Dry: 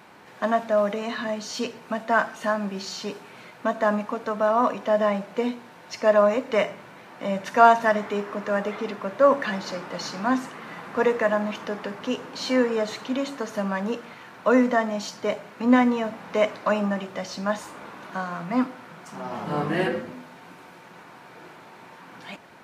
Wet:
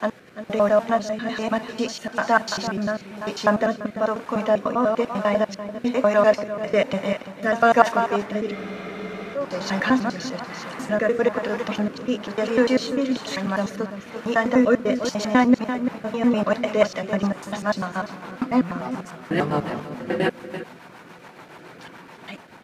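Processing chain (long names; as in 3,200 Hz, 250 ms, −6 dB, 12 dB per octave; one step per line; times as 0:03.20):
slices reordered back to front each 99 ms, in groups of 5
on a send: single-tap delay 340 ms −11 dB
on the sum: rotating-speaker cabinet horn 1.1 Hz, later 7 Hz, at 0:15.28
frozen spectrum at 0:08.56, 0.79 s
level +5 dB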